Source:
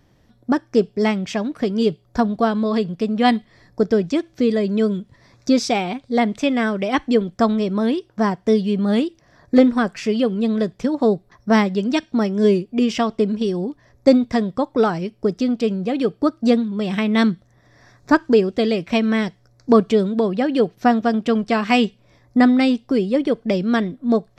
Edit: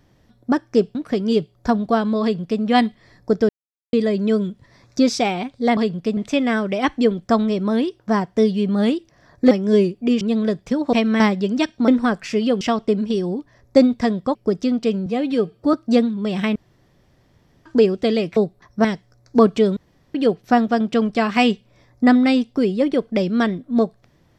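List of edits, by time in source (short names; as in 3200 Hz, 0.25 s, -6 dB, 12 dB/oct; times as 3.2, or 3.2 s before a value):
0.95–1.45 cut
2.72–3.12 copy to 6.27
3.99–4.43 mute
9.61–10.34 swap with 12.22–12.92
11.06–11.54 swap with 18.91–19.18
14.66–15.12 cut
15.83–16.28 stretch 1.5×
17.1–18.2 room tone
20.1–20.48 room tone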